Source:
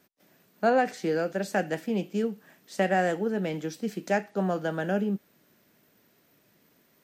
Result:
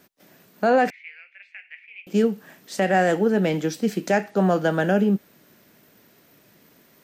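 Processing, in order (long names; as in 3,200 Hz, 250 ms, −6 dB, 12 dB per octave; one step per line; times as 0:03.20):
brickwall limiter −18.5 dBFS, peak gain reduction 6.5 dB
0:00.90–0:02.07: flat-topped band-pass 2,300 Hz, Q 4.4
level +8.5 dB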